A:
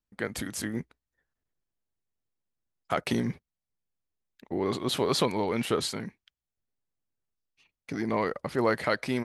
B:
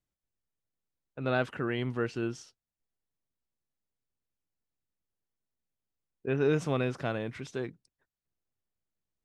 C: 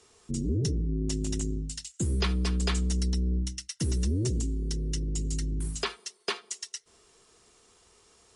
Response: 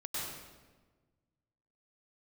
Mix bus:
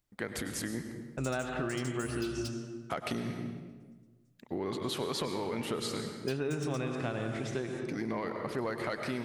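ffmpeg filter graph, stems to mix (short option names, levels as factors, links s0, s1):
-filter_complex "[0:a]asoftclip=type=tanh:threshold=0.211,volume=0.631,asplit=2[s0][s1];[s1]volume=0.447[s2];[1:a]bandreject=f=470:w=12,volume=1.41,asplit=3[s3][s4][s5];[s4]volume=0.562[s6];[2:a]aexciter=amount=6.6:drive=6.4:freq=2800,asoftclip=type=tanh:threshold=0.126,volume=0.188[s7];[s5]apad=whole_len=368292[s8];[s7][s8]sidechaingate=range=0.00398:threshold=0.00501:ratio=16:detection=peak[s9];[3:a]atrim=start_sample=2205[s10];[s2][s6]amix=inputs=2:normalize=0[s11];[s11][s10]afir=irnorm=-1:irlink=0[s12];[s0][s3][s9][s12]amix=inputs=4:normalize=0,acompressor=threshold=0.0282:ratio=6"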